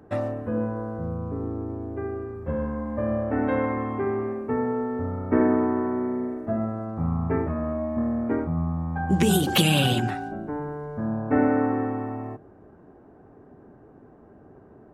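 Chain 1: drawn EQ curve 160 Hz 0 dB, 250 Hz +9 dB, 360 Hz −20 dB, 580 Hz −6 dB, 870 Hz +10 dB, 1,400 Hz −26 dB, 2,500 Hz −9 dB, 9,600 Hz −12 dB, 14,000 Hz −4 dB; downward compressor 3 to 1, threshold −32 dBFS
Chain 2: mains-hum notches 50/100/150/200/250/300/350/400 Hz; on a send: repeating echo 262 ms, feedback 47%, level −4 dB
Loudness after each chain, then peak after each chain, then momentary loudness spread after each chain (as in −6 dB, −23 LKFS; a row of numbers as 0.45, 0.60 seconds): −33.0, −25.0 LKFS; −19.0, −6.0 dBFS; 19, 10 LU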